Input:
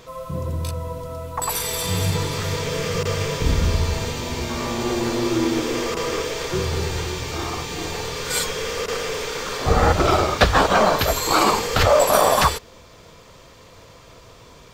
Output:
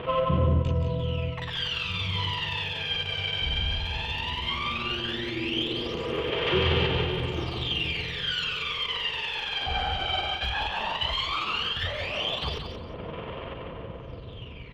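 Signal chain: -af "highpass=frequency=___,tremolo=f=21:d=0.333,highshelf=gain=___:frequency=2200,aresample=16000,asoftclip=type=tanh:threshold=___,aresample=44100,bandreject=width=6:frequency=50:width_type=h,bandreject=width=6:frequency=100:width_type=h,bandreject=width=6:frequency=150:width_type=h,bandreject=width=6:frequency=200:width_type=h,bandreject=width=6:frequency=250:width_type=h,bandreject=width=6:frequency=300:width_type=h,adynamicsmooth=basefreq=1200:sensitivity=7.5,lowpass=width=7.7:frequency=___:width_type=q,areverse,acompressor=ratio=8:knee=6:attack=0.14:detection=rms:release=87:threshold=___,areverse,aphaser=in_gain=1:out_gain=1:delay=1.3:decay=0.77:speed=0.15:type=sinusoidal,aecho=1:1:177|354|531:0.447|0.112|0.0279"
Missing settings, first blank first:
43, 2.5, -11.5dB, 3000, -28dB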